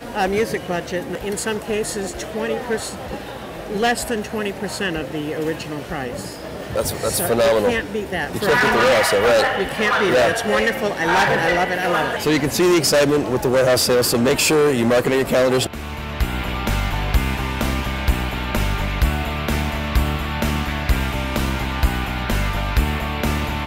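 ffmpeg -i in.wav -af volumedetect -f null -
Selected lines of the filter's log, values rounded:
mean_volume: -19.7 dB
max_volume: -5.0 dB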